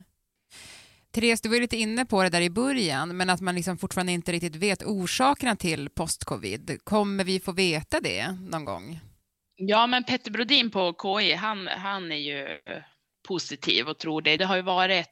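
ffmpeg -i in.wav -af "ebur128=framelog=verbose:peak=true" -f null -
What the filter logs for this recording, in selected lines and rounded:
Integrated loudness:
  I:         -25.6 LUFS
  Threshold: -36.2 LUFS
Loudness range:
  LRA:         3.2 LU
  Threshold: -46.3 LUFS
  LRA low:   -28.0 LUFS
  LRA high:  -24.8 LUFS
True peak:
  Peak:       -6.2 dBFS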